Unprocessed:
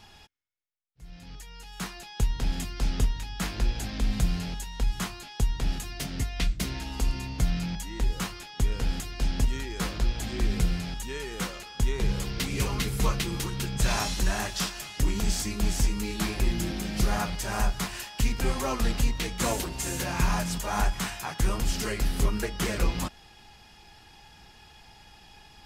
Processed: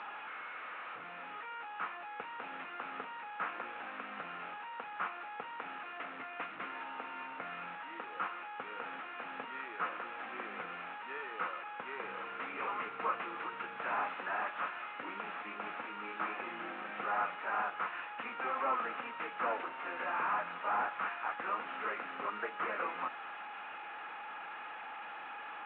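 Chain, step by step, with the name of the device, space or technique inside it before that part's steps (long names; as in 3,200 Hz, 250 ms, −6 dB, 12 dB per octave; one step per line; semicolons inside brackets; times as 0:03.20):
digital answering machine (band-pass filter 390–3,000 Hz; linear delta modulator 16 kbit/s, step −37.5 dBFS; loudspeaker in its box 380–3,900 Hz, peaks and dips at 390 Hz −8 dB, 620 Hz −4 dB, 1,300 Hz +8 dB, 2,000 Hz −3 dB, 3,200 Hz −8 dB)
level −1 dB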